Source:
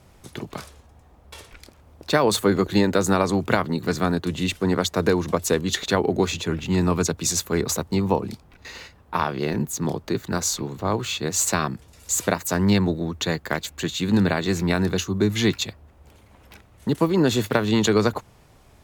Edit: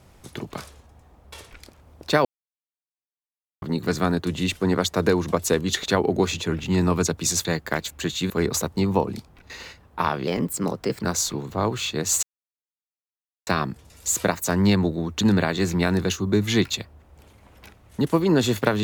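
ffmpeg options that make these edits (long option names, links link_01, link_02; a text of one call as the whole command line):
ffmpeg -i in.wav -filter_complex "[0:a]asplit=9[link_01][link_02][link_03][link_04][link_05][link_06][link_07][link_08][link_09];[link_01]atrim=end=2.25,asetpts=PTS-STARTPTS,afade=type=out:start_time=2.246:duration=0.004:curve=hsin[link_10];[link_02]atrim=start=2.25:end=3.62,asetpts=PTS-STARTPTS,volume=0[link_11];[link_03]atrim=start=3.62:end=7.452,asetpts=PTS-STARTPTS,afade=type=in:duration=0.004:curve=hsin[link_12];[link_04]atrim=start=13.238:end=14.092[link_13];[link_05]atrim=start=7.448:end=9.424[link_14];[link_06]atrim=start=9.42:end=10.3,asetpts=PTS-STARTPTS,asetrate=51156,aresample=44100,atrim=end_sample=33455,asetpts=PTS-STARTPTS[link_15];[link_07]atrim=start=10.296:end=11.5,asetpts=PTS-STARTPTS,afade=type=out:start_time=1.2:duration=0.004:curve=hsin,apad=pad_dur=1.24[link_16];[link_08]atrim=start=11.5:end=13.242,asetpts=PTS-STARTPTS,afade=type=in:duration=0.004:curve=hsin[link_17];[link_09]atrim=start=14.088[link_18];[link_10][link_11][link_12]concat=n=3:v=0:a=1[link_19];[link_19][link_13]acrossfade=duration=0.004:curve1=hsin:curve2=hsin[link_20];[link_20][link_14]acrossfade=duration=0.004:curve1=hsin:curve2=hsin[link_21];[link_21][link_15]acrossfade=duration=0.004:curve1=hsin:curve2=hsin[link_22];[link_16][link_17]concat=n=2:v=0:a=1[link_23];[link_22][link_23]acrossfade=duration=0.004:curve1=hsin:curve2=hsin[link_24];[link_24][link_18]acrossfade=duration=0.004:curve1=hsin:curve2=hsin" out.wav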